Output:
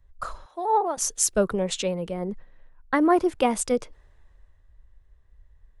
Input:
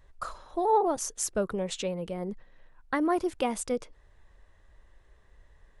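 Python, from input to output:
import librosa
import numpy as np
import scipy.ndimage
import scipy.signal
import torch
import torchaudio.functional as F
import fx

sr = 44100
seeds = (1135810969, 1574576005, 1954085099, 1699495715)

y = fx.highpass(x, sr, hz=990.0, slope=6, at=(0.45, 0.97))
y = fx.band_widen(y, sr, depth_pct=40)
y = y * librosa.db_to_amplitude(5.5)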